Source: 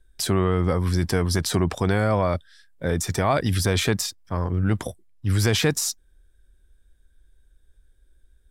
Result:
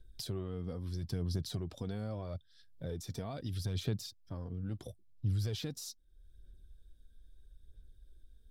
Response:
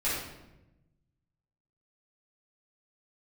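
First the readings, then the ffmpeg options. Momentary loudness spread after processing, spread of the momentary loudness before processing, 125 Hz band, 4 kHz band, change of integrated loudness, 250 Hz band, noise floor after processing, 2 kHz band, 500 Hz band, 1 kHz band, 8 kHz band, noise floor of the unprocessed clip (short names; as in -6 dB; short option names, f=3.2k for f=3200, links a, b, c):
10 LU, 8 LU, -13.5 dB, -16.5 dB, -16.0 dB, -16.5 dB, -64 dBFS, -27.0 dB, -19.5 dB, -25.0 dB, -21.0 dB, -60 dBFS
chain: -af "acompressor=threshold=-49dB:ratio=2,equalizer=f=125:t=o:w=1:g=7,equalizer=f=1k:t=o:w=1:g=-7,equalizer=f=2k:t=o:w=1:g=-10,equalizer=f=4k:t=o:w=1:g=6,equalizer=f=8k:t=o:w=1:g=-7,aphaser=in_gain=1:out_gain=1:delay=4.4:decay=0.4:speed=0.77:type=sinusoidal,volume=-3dB"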